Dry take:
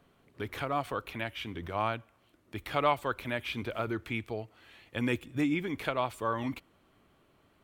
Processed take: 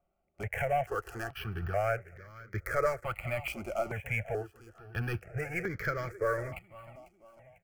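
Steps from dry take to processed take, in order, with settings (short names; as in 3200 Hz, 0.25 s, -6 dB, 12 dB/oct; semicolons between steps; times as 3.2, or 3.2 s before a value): Wiener smoothing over 9 samples; sample leveller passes 3; in parallel at -1.5 dB: compressor, threshold -29 dBFS, peak gain reduction 11.5 dB; on the sum: fixed phaser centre 1000 Hz, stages 6; on a send: feedback echo 0.497 s, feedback 42%, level -16 dB; on the sum: step phaser 2.3 Hz 460–2700 Hz; gain -4.5 dB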